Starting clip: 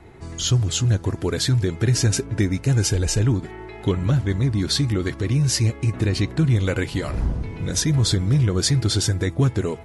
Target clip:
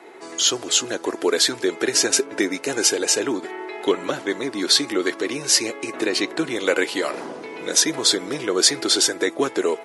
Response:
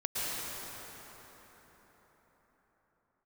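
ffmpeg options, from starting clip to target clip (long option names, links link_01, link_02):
-af "highpass=frequency=340:width=0.5412,highpass=frequency=340:width=1.3066,volume=6.5dB"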